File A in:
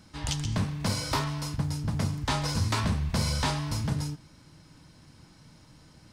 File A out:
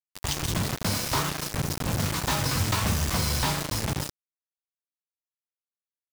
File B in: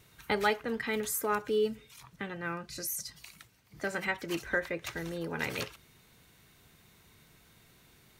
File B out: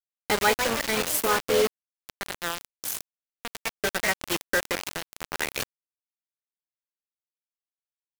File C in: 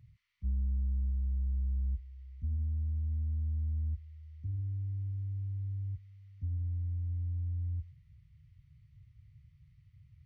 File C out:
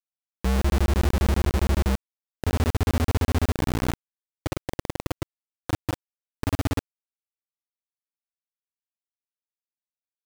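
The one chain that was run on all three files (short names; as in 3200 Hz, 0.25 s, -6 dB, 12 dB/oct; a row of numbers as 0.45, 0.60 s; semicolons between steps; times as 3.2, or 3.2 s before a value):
dynamic EQ 180 Hz, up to -4 dB, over -42 dBFS, Q 1.3; echoes that change speed 0.222 s, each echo +3 st, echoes 3, each echo -6 dB; bit-crush 5-bit; match loudness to -27 LUFS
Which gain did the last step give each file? +1.0, +5.5, +6.5 dB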